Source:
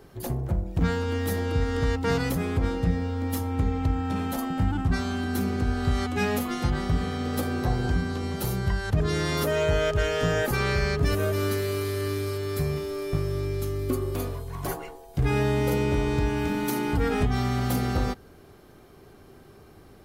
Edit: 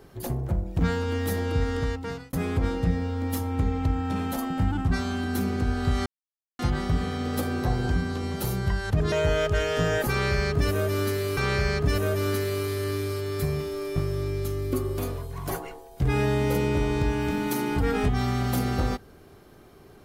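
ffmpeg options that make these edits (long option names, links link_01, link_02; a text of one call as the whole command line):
ffmpeg -i in.wav -filter_complex "[0:a]asplit=6[link_01][link_02][link_03][link_04][link_05][link_06];[link_01]atrim=end=2.33,asetpts=PTS-STARTPTS,afade=type=out:start_time=1.68:duration=0.65[link_07];[link_02]atrim=start=2.33:end=6.06,asetpts=PTS-STARTPTS,afade=type=in:duration=0.004:curve=hsin,afade=type=out:start_time=3.726:duration=0.004:curve=hsin[link_08];[link_03]atrim=start=6.06:end=6.59,asetpts=PTS-STARTPTS,volume=0[link_09];[link_04]atrim=start=6.59:end=9.122,asetpts=PTS-STARTPTS,afade=type=in:duration=0.004:curve=hsin[link_10];[link_05]atrim=start=9.558:end=11.812[link_11];[link_06]atrim=start=10.538[link_12];[link_07][link_08][link_09][link_10]concat=n=4:v=0:a=1[link_13];[link_13][link_11]acrossfade=duration=0.004:curve1=hsin:curve2=hsin[link_14];[link_14][link_12]acrossfade=duration=0.004:curve1=hsin:curve2=hsin" out.wav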